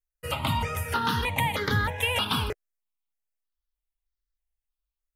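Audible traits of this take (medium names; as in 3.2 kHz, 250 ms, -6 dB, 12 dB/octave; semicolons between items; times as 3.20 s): notches that jump at a steady rate 3.2 Hz 940–2600 Hz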